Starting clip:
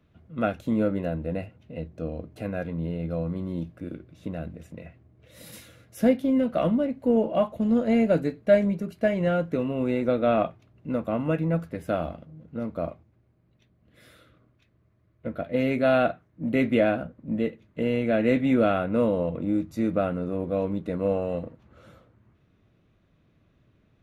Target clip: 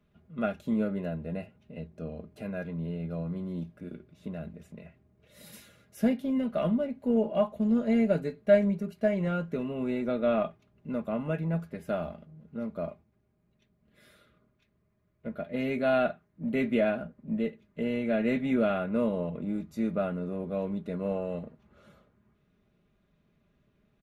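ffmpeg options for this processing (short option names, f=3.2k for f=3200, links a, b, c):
-af "aecho=1:1:4.9:0.56,volume=-6dB"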